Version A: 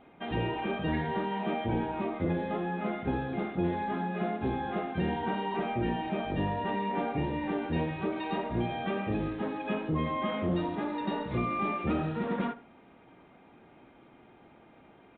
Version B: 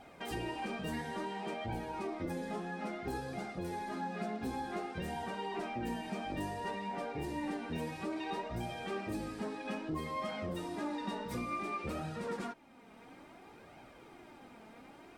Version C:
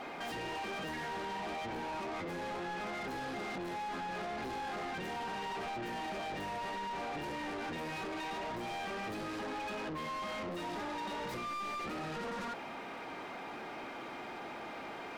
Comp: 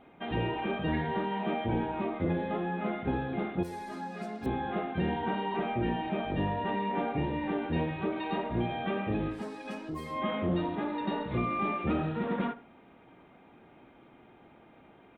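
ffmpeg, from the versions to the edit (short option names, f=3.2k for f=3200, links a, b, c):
-filter_complex "[1:a]asplit=2[a][b];[0:a]asplit=3[c][d][e];[c]atrim=end=3.632[f];[a]atrim=start=3.628:end=4.462[g];[d]atrim=start=4.458:end=9.45[h];[b]atrim=start=9.29:end=10.24[i];[e]atrim=start=10.08[j];[f][g]acrossfade=d=0.004:c1=hsin:c2=hsin[k];[k][h]acrossfade=d=0.004:c1=hsin:c2=hsin[l];[l][i]acrossfade=d=0.16:c1=tri:c2=tri[m];[m][j]acrossfade=d=0.16:c1=tri:c2=tri"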